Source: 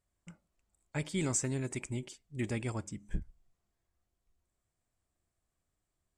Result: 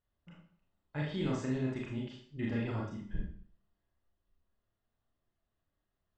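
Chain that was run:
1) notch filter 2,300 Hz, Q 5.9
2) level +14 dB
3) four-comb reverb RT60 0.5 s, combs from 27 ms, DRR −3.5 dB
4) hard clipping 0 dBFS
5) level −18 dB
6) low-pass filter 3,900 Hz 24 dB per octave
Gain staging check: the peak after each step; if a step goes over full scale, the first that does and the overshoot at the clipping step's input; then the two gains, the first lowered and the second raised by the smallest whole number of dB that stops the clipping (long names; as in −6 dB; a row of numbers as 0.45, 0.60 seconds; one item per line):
−19.0, −5.0, −2.0, −2.0, −20.0, −22.5 dBFS
no step passes full scale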